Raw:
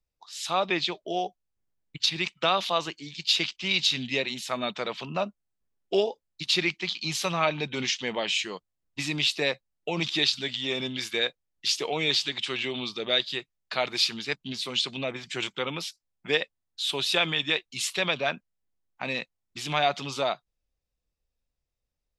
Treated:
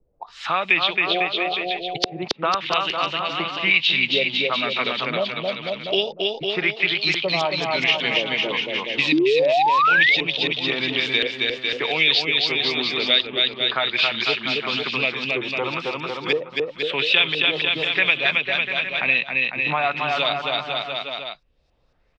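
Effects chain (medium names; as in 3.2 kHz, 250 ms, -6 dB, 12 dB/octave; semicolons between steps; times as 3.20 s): dynamic bell 2.6 kHz, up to +8 dB, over -41 dBFS, Q 1.1; LFO low-pass saw up 0.98 Hz 410–5000 Hz; bouncing-ball echo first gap 270 ms, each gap 0.85×, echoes 5; painted sound rise, 9.12–10.15 s, 290–2300 Hz -12 dBFS; three bands compressed up and down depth 70%; trim -1 dB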